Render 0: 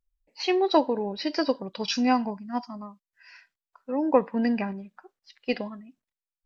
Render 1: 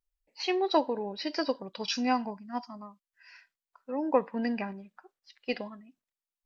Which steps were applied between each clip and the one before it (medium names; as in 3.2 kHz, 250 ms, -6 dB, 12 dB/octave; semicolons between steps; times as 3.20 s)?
bass shelf 350 Hz -5 dB; trim -3 dB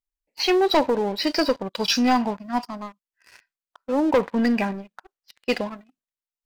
waveshaping leveller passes 3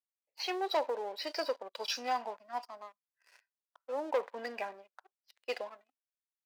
ladder high-pass 420 Hz, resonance 30%; trim -6.5 dB